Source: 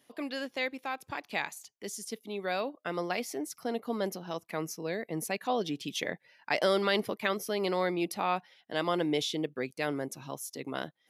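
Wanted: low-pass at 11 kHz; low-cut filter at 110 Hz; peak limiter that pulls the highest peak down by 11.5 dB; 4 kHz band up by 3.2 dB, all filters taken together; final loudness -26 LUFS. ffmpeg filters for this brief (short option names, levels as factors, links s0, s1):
-af "highpass=110,lowpass=11000,equalizer=f=4000:t=o:g=4,volume=3.16,alimiter=limit=0.211:level=0:latency=1"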